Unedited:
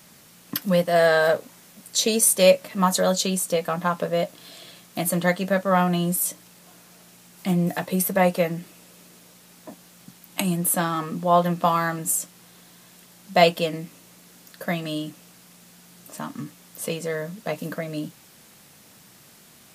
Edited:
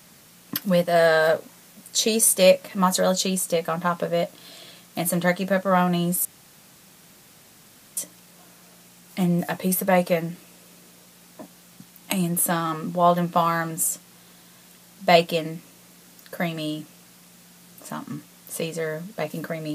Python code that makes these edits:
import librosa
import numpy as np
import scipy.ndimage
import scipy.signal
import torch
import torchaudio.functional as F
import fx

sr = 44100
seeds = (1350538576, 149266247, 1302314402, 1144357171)

y = fx.edit(x, sr, fx.insert_room_tone(at_s=6.25, length_s=1.72), tone=tone)